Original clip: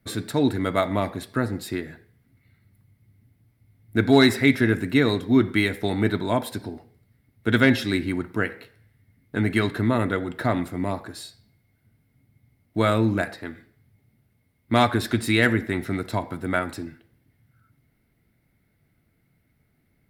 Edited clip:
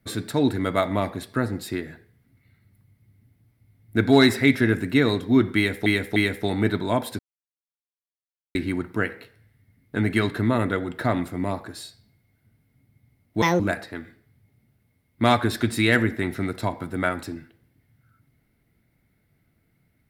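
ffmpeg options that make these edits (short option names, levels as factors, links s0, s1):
-filter_complex "[0:a]asplit=7[s0][s1][s2][s3][s4][s5][s6];[s0]atrim=end=5.862[s7];[s1]atrim=start=5.558:end=5.862[s8];[s2]atrim=start=5.558:end=6.59,asetpts=PTS-STARTPTS,afade=t=out:st=1.028:d=0.004:c=hsin[s9];[s3]atrim=start=6.59:end=7.95,asetpts=PTS-STARTPTS,volume=0[s10];[s4]atrim=start=7.95:end=12.824,asetpts=PTS-STARTPTS,afade=t=in:d=0.004:c=hsin[s11];[s5]atrim=start=12.82:end=13.1,asetpts=PTS-STARTPTS,asetrate=69678,aresample=44100,atrim=end_sample=7815,asetpts=PTS-STARTPTS[s12];[s6]atrim=start=13.096[s13];[s7][s8]acrossfade=d=0.004:c1=hsin:c2=hsin[s14];[s9][s10][s11]concat=n=3:v=0:a=1[s15];[s14][s15]acrossfade=d=0.004:c1=hsin:c2=hsin[s16];[s16][s12]acrossfade=d=0.004:c1=hsin:c2=hsin[s17];[s17][s13]acrossfade=d=0.004:c1=hsin:c2=hsin"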